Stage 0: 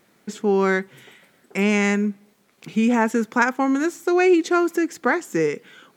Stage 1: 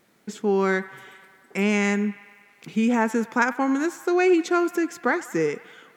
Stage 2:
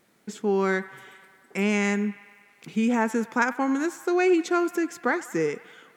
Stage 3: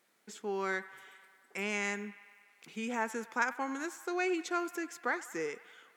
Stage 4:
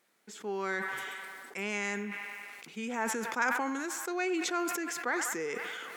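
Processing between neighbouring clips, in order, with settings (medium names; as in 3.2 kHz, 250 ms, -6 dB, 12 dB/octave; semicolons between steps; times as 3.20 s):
feedback echo behind a band-pass 98 ms, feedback 72%, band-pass 1.5 kHz, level -16.5 dB; trim -2.5 dB
peaking EQ 9.1 kHz +2.5 dB 0.53 oct; trim -2 dB
high-pass 700 Hz 6 dB/octave; trim -6 dB
decay stretcher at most 22 dB/s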